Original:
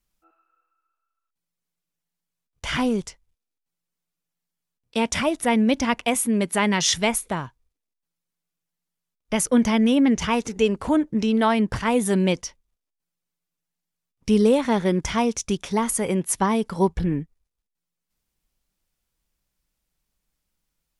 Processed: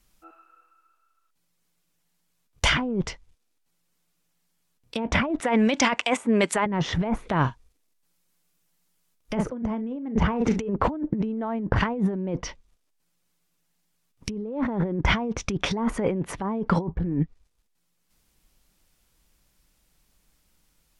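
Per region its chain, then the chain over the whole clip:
5.4–6.66 HPF 890 Hz 6 dB/oct + bell 7800 Hz +11.5 dB 0.57 oct
7.41–10.69 high shelf 7800 Hz +4.5 dB + doubler 39 ms -12 dB
whole clip: treble ducked by the level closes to 1000 Hz, closed at -18.5 dBFS; bell 300 Hz +2 dB 0.21 oct; negative-ratio compressor -30 dBFS, ratio -1; gain +4.5 dB

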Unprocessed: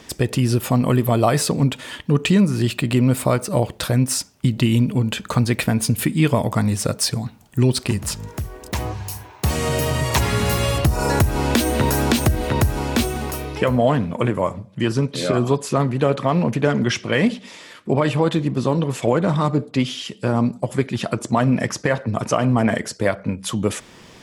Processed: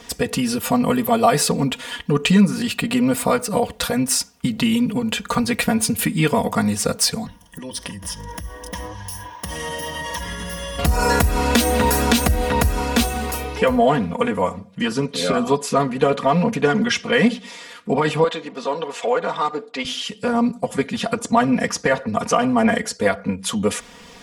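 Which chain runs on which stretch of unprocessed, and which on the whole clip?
7.26–10.79 ripple EQ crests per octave 1.2, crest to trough 12 dB + compressor, threshold -27 dBFS
18.24–19.85 HPF 480 Hz + air absorption 65 m
whole clip: bell 270 Hz -5 dB 1 oct; comb 4.2 ms, depth 98%

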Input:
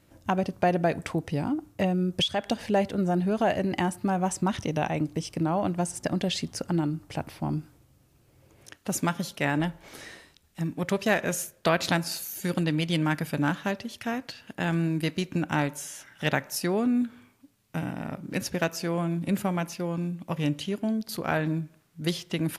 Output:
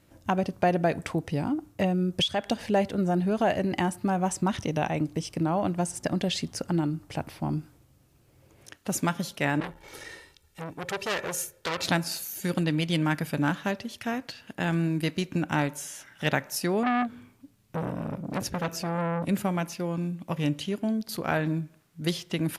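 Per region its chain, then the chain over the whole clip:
9.6–11.85 comb 2.2 ms, depth 57% + core saturation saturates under 3800 Hz
16.83–19.26 low shelf 350 Hz +8 dB + core saturation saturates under 1600 Hz
whole clip: dry

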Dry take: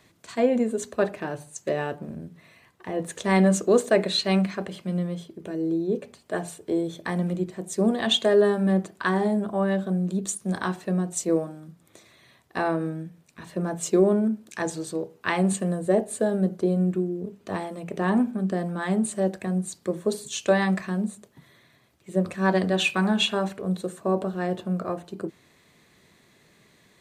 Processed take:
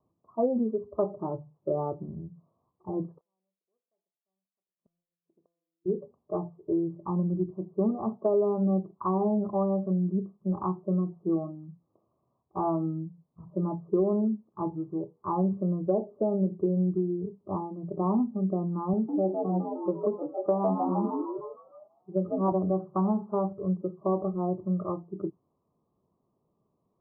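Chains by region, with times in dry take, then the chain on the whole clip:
3.18–5.86 flipped gate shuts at -27 dBFS, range -39 dB + low shelf 280 Hz -10.5 dB + resonator 170 Hz, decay 0.9 s, mix 70%
18.93–22.52 HPF 160 Hz + frequency-shifting echo 0.154 s, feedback 58%, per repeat +78 Hz, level -3.5 dB
whole clip: steep low-pass 1200 Hz 96 dB/oct; spectral noise reduction 14 dB; compressor 3:1, threshold -23 dBFS

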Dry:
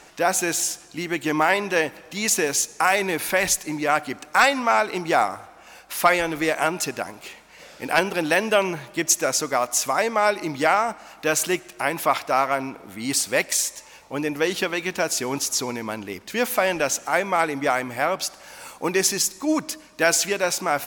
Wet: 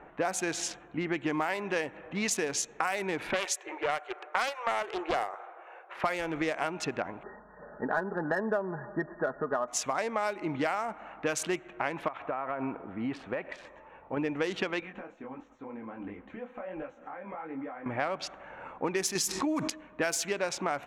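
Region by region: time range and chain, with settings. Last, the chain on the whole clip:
3.33–6.04 brick-wall FIR high-pass 330 Hz + Doppler distortion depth 0.54 ms
7.23–9.68 brick-wall FIR low-pass 1900 Hz + comb 4.8 ms, depth 50%
12.08–14.17 tone controls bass -2 dB, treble -8 dB + compressor 12:1, threshold -26 dBFS + notch 2100 Hz, Q 14
14.8–17.86 comb 3.8 ms, depth 52% + compressor 12:1, threshold -32 dBFS + detuned doubles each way 52 cents
19.15–19.7 HPF 53 Hz + notch 570 Hz + fast leveller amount 70%
whole clip: Wiener smoothing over 9 samples; low-pass opened by the level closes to 1500 Hz, open at -15.5 dBFS; compressor 5:1, threshold -28 dBFS

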